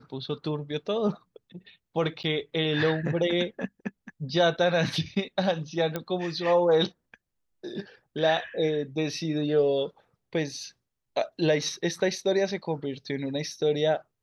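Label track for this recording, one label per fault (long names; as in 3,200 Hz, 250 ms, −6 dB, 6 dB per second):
2.230000	2.240000	drop-out 9.1 ms
5.960000	5.960000	click −15 dBFS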